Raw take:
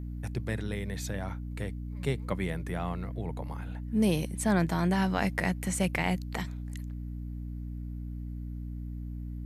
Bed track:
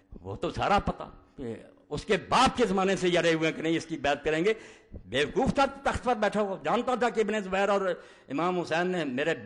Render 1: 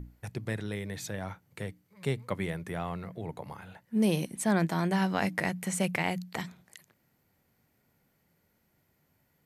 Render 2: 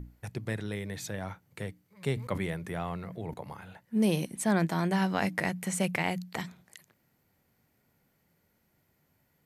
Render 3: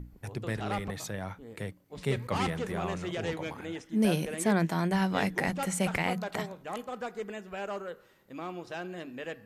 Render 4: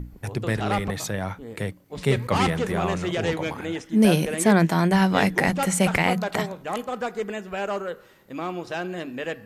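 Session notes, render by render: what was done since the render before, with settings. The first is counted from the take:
hum notches 60/120/180/240/300 Hz
2.13–3.34 s: decay stretcher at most 80 dB/s
add bed track -11 dB
trim +8.5 dB

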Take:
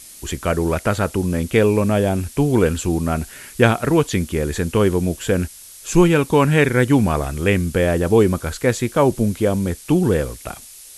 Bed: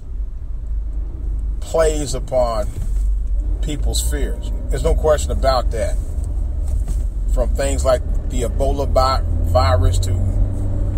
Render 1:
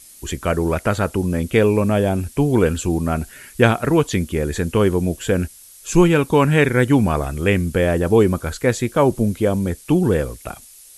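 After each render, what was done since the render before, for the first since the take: noise reduction 6 dB, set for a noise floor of -41 dBFS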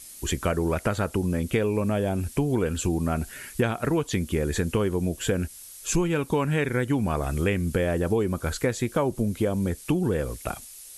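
compression 6:1, threshold -21 dBFS, peak gain reduction 13 dB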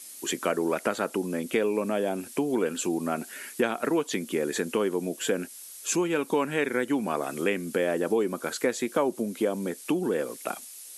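high-pass 230 Hz 24 dB/octave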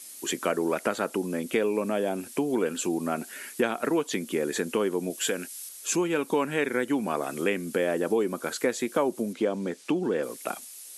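5.10–5.69 s: tilt shelf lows -4.5 dB, about 1.3 kHz; 9.33–10.23 s: low-pass 6.1 kHz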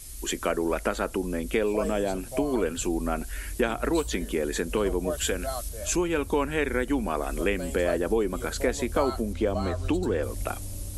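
add bed -17 dB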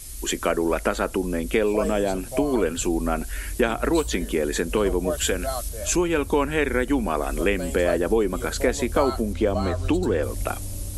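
trim +4 dB

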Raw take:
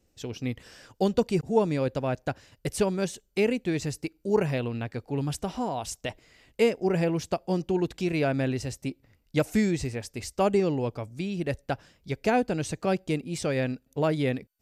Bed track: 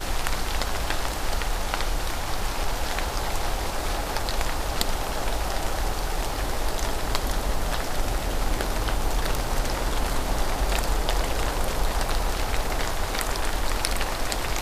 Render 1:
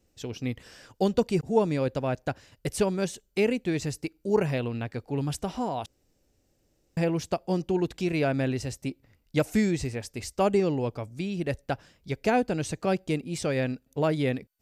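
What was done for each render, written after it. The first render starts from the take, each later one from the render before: 5.86–6.97 s: room tone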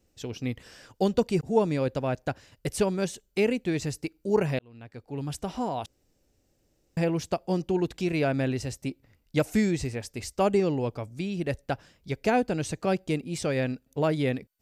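4.59–5.61 s: fade in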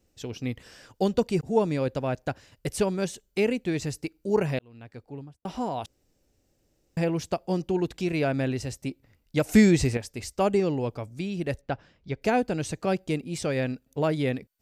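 4.93–5.45 s: studio fade out; 9.49–9.97 s: gain +7 dB; 11.61–12.22 s: distance through air 150 m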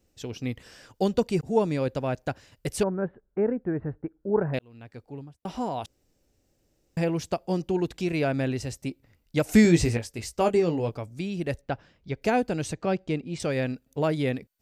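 2.83–4.54 s: elliptic low-pass 1.6 kHz, stop band 80 dB; 9.63–10.95 s: doubling 18 ms -7 dB; 12.73–13.40 s: distance through air 110 m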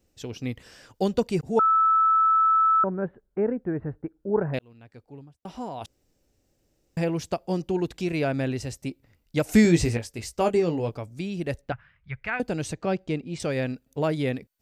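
1.59–2.84 s: bleep 1.31 kHz -16.5 dBFS; 4.73–5.81 s: gain -4.5 dB; 11.72–12.40 s: FFT filter 130 Hz 0 dB, 230 Hz -16 dB, 330 Hz -22 dB, 810 Hz -9 dB, 1.2 kHz +3 dB, 2.1 kHz +5 dB, 6.3 kHz -24 dB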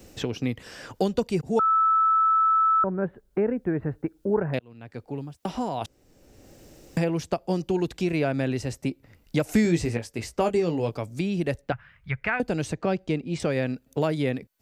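three bands compressed up and down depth 70%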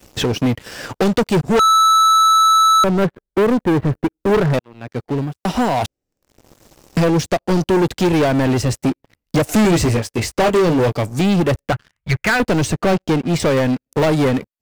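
waveshaping leveller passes 5; upward expansion 1.5:1, over -32 dBFS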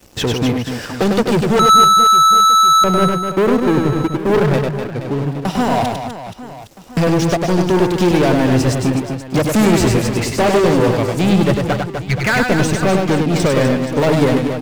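reverse bouncing-ball echo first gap 100 ms, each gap 1.5×, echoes 5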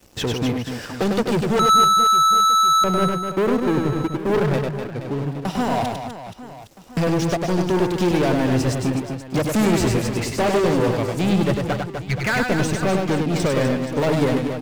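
trim -5.5 dB

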